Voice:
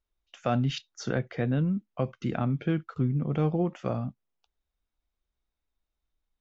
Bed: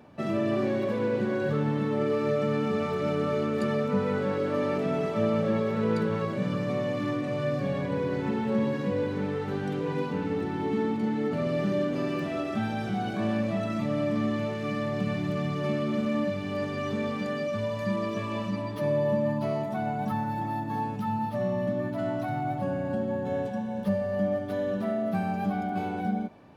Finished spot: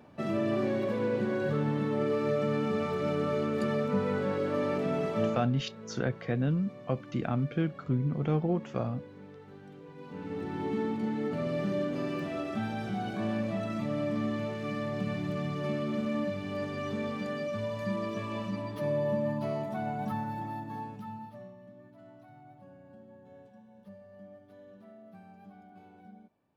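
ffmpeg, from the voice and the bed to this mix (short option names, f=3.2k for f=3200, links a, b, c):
-filter_complex "[0:a]adelay=4900,volume=-2dB[a];[1:a]volume=12.5dB,afade=t=out:st=5.24:d=0.22:silence=0.149624,afade=t=in:st=9.98:d=0.61:silence=0.177828,afade=t=out:st=20.1:d=1.46:silence=0.105925[b];[a][b]amix=inputs=2:normalize=0"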